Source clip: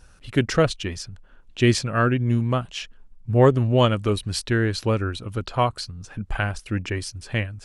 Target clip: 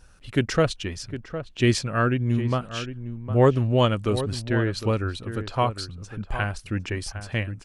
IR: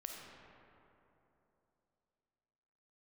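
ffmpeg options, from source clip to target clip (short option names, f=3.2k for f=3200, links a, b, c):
-filter_complex "[0:a]asettb=1/sr,asplit=3[a][b][c];[a]atrim=end=4.344[d];[b]atrim=start=4.34:end=4.77,asetpts=PTS-STARTPTS,afade=t=in:d=0.004:c=qsin,afade=t=out:st=0.426:d=0.004:c=qsin,highshelf=f=4.2k:g=-9[e];[c]atrim=start=4.766[f];[d][e]acrossfade=d=0.004:c1=hsin:c2=qsin[g];[g][f]acrossfade=d=0.004:c1=qsin:c2=hsin,asplit=2[h][i];[i]adelay=758,volume=-11dB,highshelf=f=4k:g=-17.1[j];[h][j]amix=inputs=2:normalize=0,volume=-2dB"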